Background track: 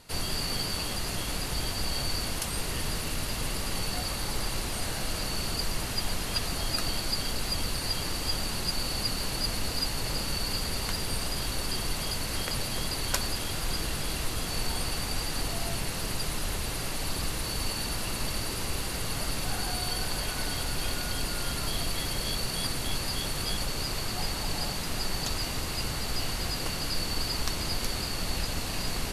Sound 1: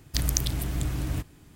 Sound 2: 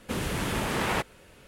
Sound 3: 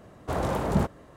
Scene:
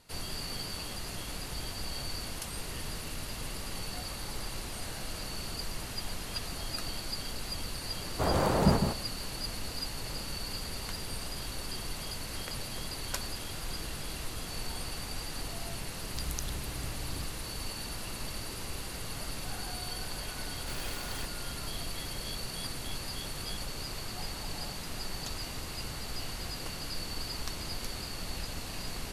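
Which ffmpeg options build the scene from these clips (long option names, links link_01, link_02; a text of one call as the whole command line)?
ffmpeg -i bed.wav -i cue0.wav -i cue1.wav -i cue2.wav -filter_complex "[3:a]asplit=2[link_01][link_02];[0:a]volume=-7dB[link_03];[link_01]aecho=1:1:156:0.501[link_04];[1:a]aresample=32000,aresample=44100[link_05];[link_02]aeval=exprs='(mod(23.7*val(0)+1,2)-1)/23.7':channel_layout=same[link_06];[link_04]atrim=end=1.16,asetpts=PTS-STARTPTS,volume=-0.5dB,afade=type=in:duration=0.004:curve=hsin,afade=type=out:start_time=1.156:duration=0.004:curve=hsin,adelay=7910[link_07];[link_05]atrim=end=1.55,asetpts=PTS-STARTPTS,volume=-13dB,afade=type=in:duration=0.004:curve=hsin,afade=type=out:start_time=1.546:duration=0.004:curve=hsin,adelay=16020[link_08];[link_06]atrim=end=1.16,asetpts=PTS-STARTPTS,volume=-12dB,afade=type=in:duration=0.004:curve=hsin,afade=type=out:start_time=1.156:duration=0.004:curve=hsin,adelay=20390[link_09];[link_03][link_07][link_08][link_09]amix=inputs=4:normalize=0" out.wav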